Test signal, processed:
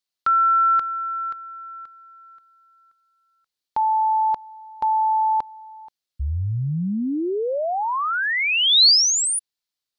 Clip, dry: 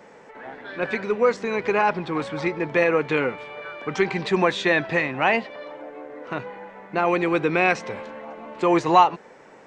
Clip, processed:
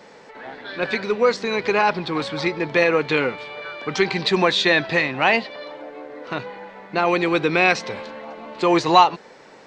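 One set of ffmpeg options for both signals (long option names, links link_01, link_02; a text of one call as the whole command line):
ffmpeg -i in.wav -af "equalizer=frequency=4300:width_type=o:width=0.86:gain=11.5,volume=1.5dB" out.wav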